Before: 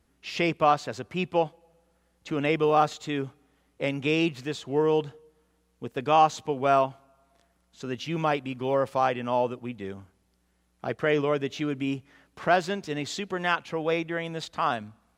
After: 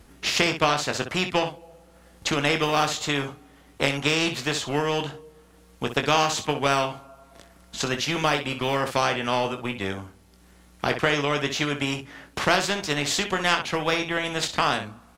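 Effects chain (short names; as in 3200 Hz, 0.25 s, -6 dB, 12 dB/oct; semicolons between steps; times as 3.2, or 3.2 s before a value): transient shaper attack +6 dB, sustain -3 dB; early reflections 21 ms -8.5 dB, 63 ms -14 dB; spectral compressor 2:1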